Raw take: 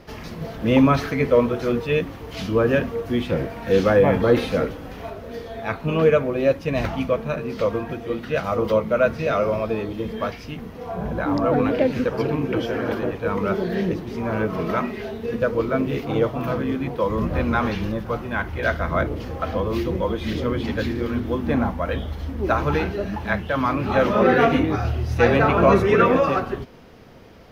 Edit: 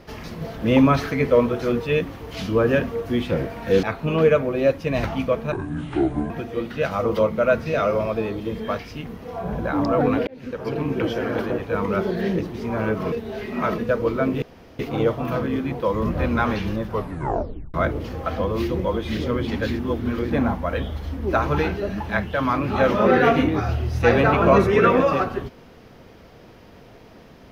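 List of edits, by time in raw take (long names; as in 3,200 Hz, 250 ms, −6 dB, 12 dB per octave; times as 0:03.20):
0:03.83–0:05.64: remove
0:07.33–0:07.83: play speed 64%
0:11.80–0:12.46: fade in linear
0:14.65–0:15.31: reverse
0:15.95: splice in room tone 0.37 s
0:18.06: tape stop 0.84 s
0:20.95–0:21.46: reverse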